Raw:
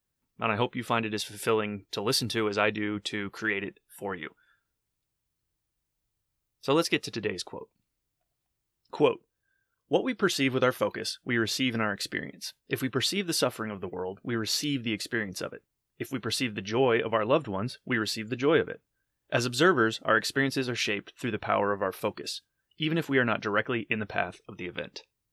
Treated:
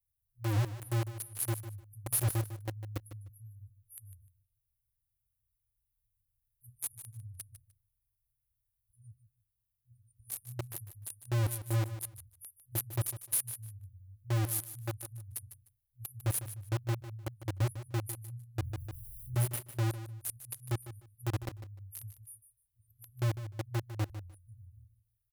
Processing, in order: FFT band-reject 120–9200 Hz; in parallel at -3 dB: companded quantiser 2-bit; on the sum: feedback delay 151 ms, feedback 20%, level -12.5 dB; 18.60–19.35 s: level flattener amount 70%

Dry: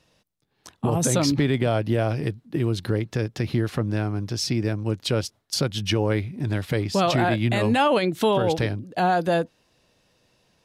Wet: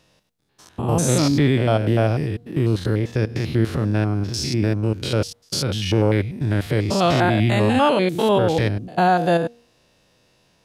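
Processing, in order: spectrogram pixelated in time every 100 ms; de-hum 236.7 Hz, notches 3; trim +5.5 dB

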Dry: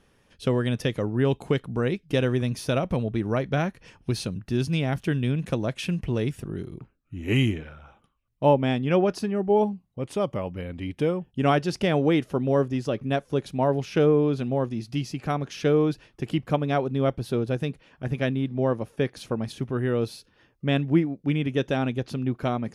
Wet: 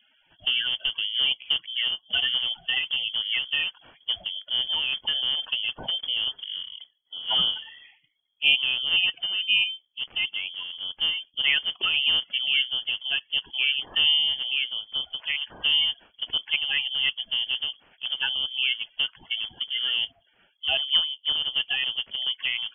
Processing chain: coarse spectral quantiser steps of 30 dB; frequency inversion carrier 3.3 kHz; trim -1.5 dB

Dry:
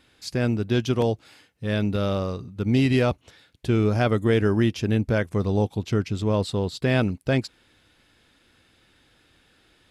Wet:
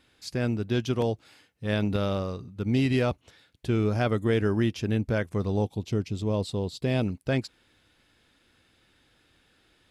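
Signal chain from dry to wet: 1.65–2.22 s: transient shaper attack +9 dB, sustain +5 dB; 5.65–7.06 s: peaking EQ 1.5 kHz -9 dB 0.95 oct; trim -4 dB

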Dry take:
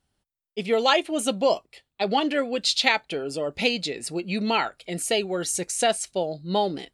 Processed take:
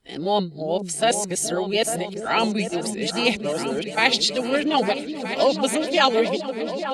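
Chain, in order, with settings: reverse the whole clip; delay with an opening low-pass 425 ms, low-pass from 400 Hz, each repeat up 2 oct, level -6 dB; trim +2 dB

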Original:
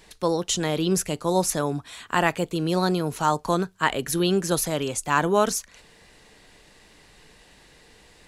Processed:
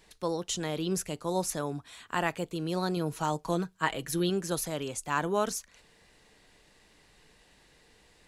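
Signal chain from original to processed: 2.96–4.30 s: comb 6.2 ms, depth 52%; trim -8 dB

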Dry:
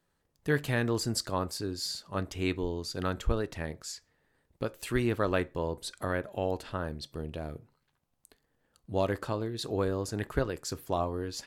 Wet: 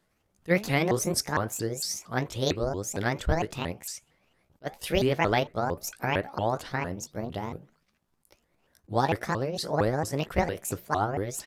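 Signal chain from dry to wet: sawtooth pitch modulation +9 st, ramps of 228 ms; resampled via 32 kHz; attacks held to a fixed rise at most 590 dB/s; trim +5 dB

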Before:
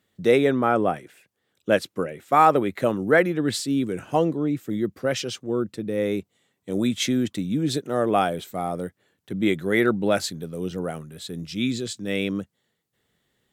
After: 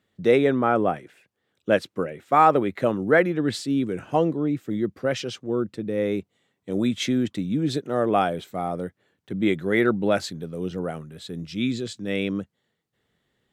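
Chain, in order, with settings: treble shelf 6.6 kHz -11.5 dB

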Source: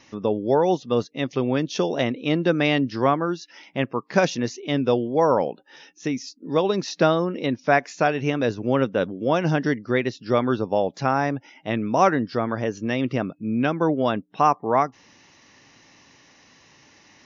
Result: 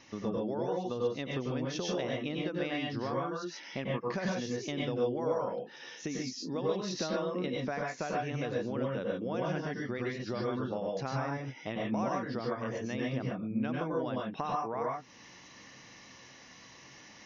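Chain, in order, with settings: compression 6:1, threshold -31 dBFS, peak gain reduction 17.5 dB; reverberation, pre-delay 90 ms, DRR -2.5 dB; trim -4 dB

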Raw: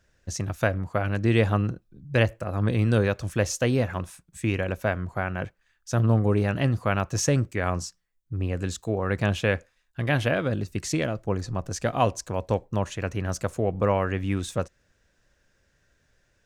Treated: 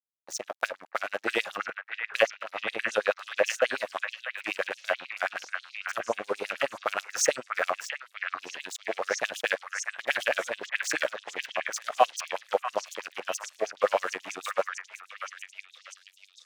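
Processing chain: high-pass 130 Hz 12 dB/octave; peaking EQ 960 Hz -6 dB 0.22 oct; crossover distortion -37 dBFS; 2.29–3.78 s: treble shelf 6.6 kHz -7.5 dB; repeats whose band climbs or falls 643 ms, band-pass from 1.6 kHz, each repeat 0.7 oct, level -1.5 dB; LFO high-pass sine 9.3 Hz 540–6900 Hz

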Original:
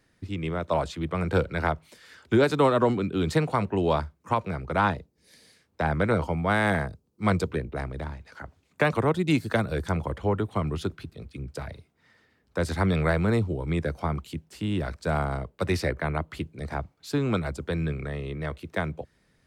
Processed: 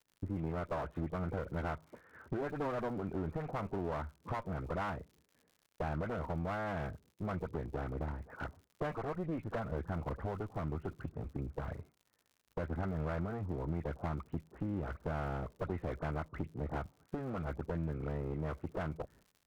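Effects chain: delay that grows with frequency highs late, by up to 134 ms; low-pass 1.5 kHz 24 dB/octave; expander -52 dBFS; in parallel at +1 dB: peak limiter -20 dBFS, peak gain reduction 10.5 dB; on the sum: compression 4:1, threshold -30 dBFS, peak gain reduction 14.5 dB; crackle 110 per s -50 dBFS; one-sided clip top -37 dBFS; trim -3.5 dB

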